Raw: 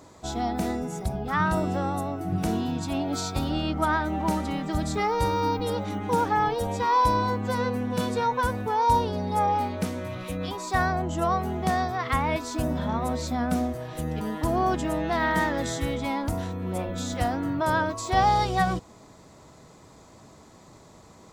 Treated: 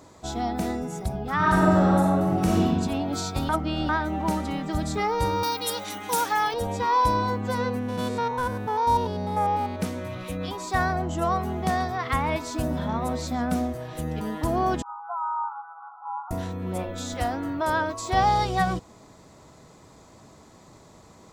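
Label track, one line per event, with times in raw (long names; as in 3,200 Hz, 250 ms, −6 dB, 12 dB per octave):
1.360000	2.610000	thrown reverb, RT60 1.6 s, DRR −4 dB
3.490000	3.890000	reverse
5.430000	6.540000	spectral tilt +4.5 dB per octave
7.790000	9.800000	spectrum averaged block by block every 100 ms
10.470000	13.520000	single-tap delay 135 ms −19 dB
14.820000	16.310000	linear-phase brick-wall band-pass 700–1,500 Hz
16.830000	18.030000	parametric band 150 Hz −12.5 dB 0.66 octaves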